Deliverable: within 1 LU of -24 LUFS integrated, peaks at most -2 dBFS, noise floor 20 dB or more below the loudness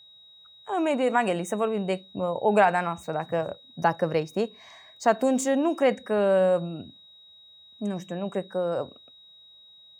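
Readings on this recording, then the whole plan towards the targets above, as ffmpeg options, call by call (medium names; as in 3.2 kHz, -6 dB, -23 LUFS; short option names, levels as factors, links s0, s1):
steady tone 3.8 kHz; tone level -50 dBFS; loudness -26.0 LUFS; peak level -7.0 dBFS; loudness target -24.0 LUFS
-> -af "bandreject=f=3800:w=30"
-af "volume=1.26"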